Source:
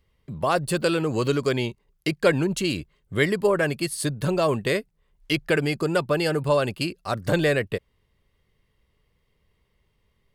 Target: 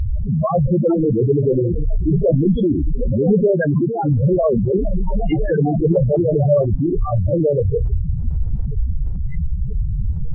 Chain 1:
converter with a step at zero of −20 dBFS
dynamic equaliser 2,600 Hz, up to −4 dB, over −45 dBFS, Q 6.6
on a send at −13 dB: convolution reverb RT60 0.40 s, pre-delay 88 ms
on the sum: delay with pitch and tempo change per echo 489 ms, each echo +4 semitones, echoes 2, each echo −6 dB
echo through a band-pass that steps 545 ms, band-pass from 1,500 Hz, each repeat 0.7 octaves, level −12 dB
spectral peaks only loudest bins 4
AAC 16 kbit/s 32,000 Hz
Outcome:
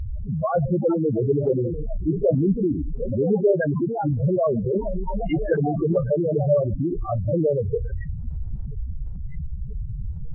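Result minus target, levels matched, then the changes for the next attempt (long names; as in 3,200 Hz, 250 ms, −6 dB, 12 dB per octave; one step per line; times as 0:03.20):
converter with a step at zero: distortion −5 dB
change: converter with a step at zero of −10.5 dBFS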